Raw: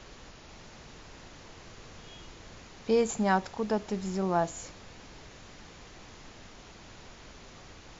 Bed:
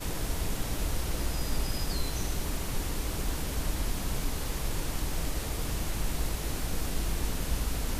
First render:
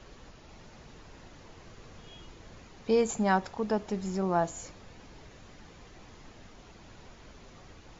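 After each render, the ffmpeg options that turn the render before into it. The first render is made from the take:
ffmpeg -i in.wav -af "afftdn=noise_reduction=6:noise_floor=-51" out.wav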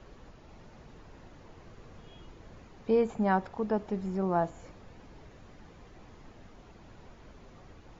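ffmpeg -i in.wav -filter_complex "[0:a]acrossover=split=4100[link_01][link_02];[link_02]acompressor=threshold=-57dB:ratio=4:attack=1:release=60[link_03];[link_01][link_03]amix=inputs=2:normalize=0,highshelf=frequency=2300:gain=-9.5" out.wav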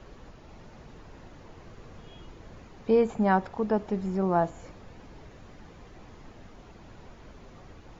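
ffmpeg -i in.wav -af "volume=3.5dB" out.wav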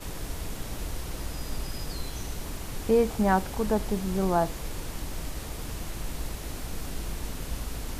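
ffmpeg -i in.wav -i bed.wav -filter_complex "[1:a]volume=-3.5dB[link_01];[0:a][link_01]amix=inputs=2:normalize=0" out.wav

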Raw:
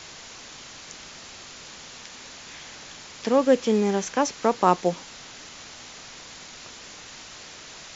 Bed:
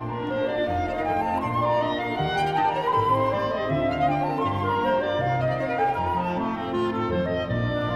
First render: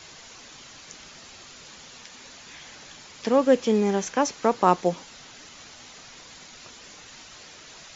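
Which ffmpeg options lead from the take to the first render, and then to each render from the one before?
ffmpeg -i in.wav -af "afftdn=noise_reduction=6:noise_floor=-44" out.wav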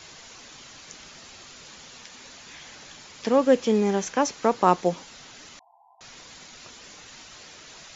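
ffmpeg -i in.wav -filter_complex "[0:a]asettb=1/sr,asplit=3[link_01][link_02][link_03];[link_01]atrim=end=5.594[link_04];[link_02]atrim=start=5.59:end=6.01,asetpts=PTS-STARTPTS,afade=type=in:duration=0.004:curve=qsin,afade=type=out:start_time=0.416:duration=0.004:curve=qsin,asuperpass=centerf=830:order=20:qfactor=2.2[link_05];[link_03]atrim=start=6.006[link_06];[link_04][link_05]acrossfade=duration=0.004:curve1=hsin:curve2=qsin[link_07];[link_07][link_06]acrossfade=duration=0.004:curve1=qsin:curve2=hsin" out.wav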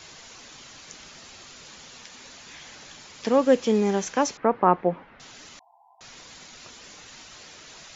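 ffmpeg -i in.wav -filter_complex "[0:a]asettb=1/sr,asplit=3[link_01][link_02][link_03];[link_01]atrim=end=4.374[link_04];[link_02]atrim=start=4.37:end=5.2,asetpts=PTS-STARTPTS,afade=type=in:duration=0.004:curve=qsin,afade=type=out:start_time=0.826:duration=0.004:curve=qsin,lowpass=frequency=2100:width=0.5412,lowpass=frequency=2100:width=1.3066[link_05];[link_03]atrim=start=5.196[link_06];[link_04][link_05]acrossfade=duration=0.004:curve1=hsin:curve2=qsin[link_07];[link_07][link_06]acrossfade=duration=0.004:curve1=qsin:curve2=hsin" out.wav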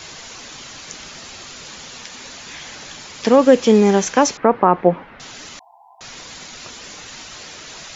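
ffmpeg -i in.wav -af "alimiter=level_in=9.5dB:limit=-1dB:release=50:level=0:latency=1" out.wav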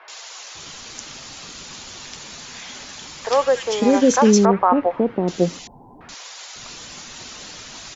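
ffmpeg -i in.wav -filter_complex "[0:a]acrossover=split=520|1900[link_01][link_02][link_03];[link_03]adelay=80[link_04];[link_01]adelay=550[link_05];[link_05][link_02][link_04]amix=inputs=3:normalize=0" out.wav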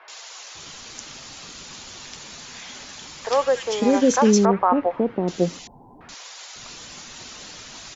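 ffmpeg -i in.wav -af "volume=-2.5dB" out.wav

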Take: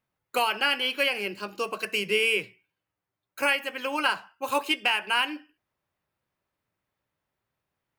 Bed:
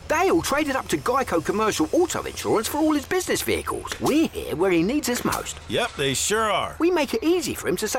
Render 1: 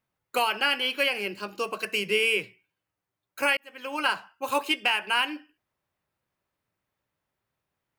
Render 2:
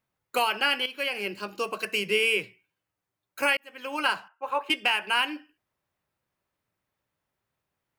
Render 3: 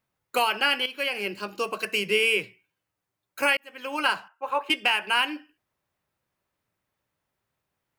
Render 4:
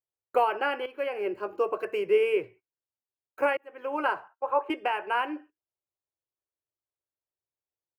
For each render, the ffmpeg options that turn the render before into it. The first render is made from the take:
ffmpeg -i in.wav -filter_complex "[0:a]asplit=2[link_01][link_02];[link_01]atrim=end=3.57,asetpts=PTS-STARTPTS,afade=type=out:start_time=3.566:duration=0.004:curve=hsin[link_03];[link_02]atrim=start=3.57,asetpts=PTS-STARTPTS,afade=type=in:duration=0.53[link_04];[link_03][link_04]concat=n=2:v=0:a=1" out.wav
ffmpeg -i in.wav -filter_complex "[0:a]asettb=1/sr,asplit=3[link_01][link_02][link_03];[link_01]atrim=end=4.284[link_04];[link_02]atrim=start=4.28:end=4.7,asetpts=PTS-STARTPTS,afade=type=in:duration=0.004:curve=qsin,afade=type=out:start_time=0.416:duration=0.004:curve=qsin,acrossover=split=450 2200:gain=0.141 1 0.0794[link_05][link_06][link_07];[link_05][link_06][link_07]amix=inputs=3:normalize=0[link_08];[link_03]atrim=start=4.696[link_09];[link_04][link_08]acrossfade=duration=0.004:curve1=hsin:curve2=qsin[link_10];[link_10][link_09]acrossfade=duration=0.004:curve1=qsin:curve2=hsin,asplit=2[link_11][link_12];[link_11]atrim=end=0.86,asetpts=PTS-STARTPTS,afade=type=out:start_time=0.856:duration=0.004:curve=hsin:silence=0.237137[link_13];[link_12]atrim=start=0.86,asetpts=PTS-STARTPTS,afade=type=in:duration=0.41:silence=0.237137[link_14];[link_13][link_14]concat=n=2:v=0:a=1" out.wav
ffmpeg -i in.wav -af "volume=1.5dB" out.wav
ffmpeg -i in.wav -af "agate=range=-21dB:threshold=-47dB:ratio=16:detection=peak,firequalizer=gain_entry='entry(110,0);entry(200,-14);entry(340,5);entry(3800,-24);entry(15000,-18)':delay=0.05:min_phase=1" out.wav

